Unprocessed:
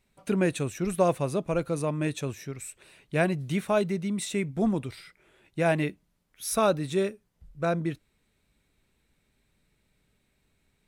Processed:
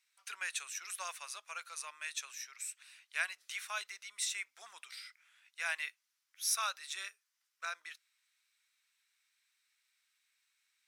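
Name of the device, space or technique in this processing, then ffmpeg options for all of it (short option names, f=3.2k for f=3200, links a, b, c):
headphones lying on a table: -af "highpass=f=1.3k:w=0.5412,highpass=f=1.3k:w=1.3066,equalizer=f=5.6k:t=o:w=0.59:g=7,volume=-3dB"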